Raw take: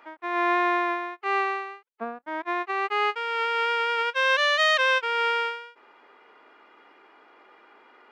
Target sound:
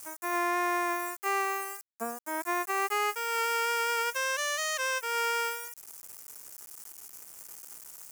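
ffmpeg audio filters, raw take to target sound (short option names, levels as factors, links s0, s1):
-af "aeval=exprs='val(0)*gte(abs(val(0)),0.00335)':c=same,aexciter=amount=15.6:drive=4.3:freq=5700,alimiter=limit=0.133:level=0:latency=1:release=339,volume=0.75"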